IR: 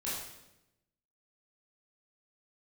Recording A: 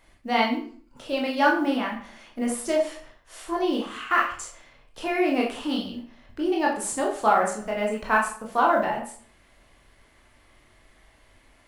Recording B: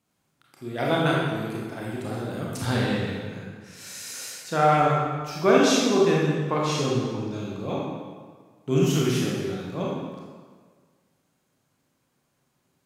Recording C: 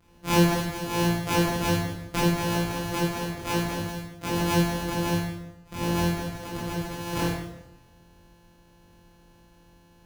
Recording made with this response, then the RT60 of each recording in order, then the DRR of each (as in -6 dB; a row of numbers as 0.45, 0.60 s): C; 0.50, 1.6, 0.90 s; -2.0, -4.5, -8.5 dB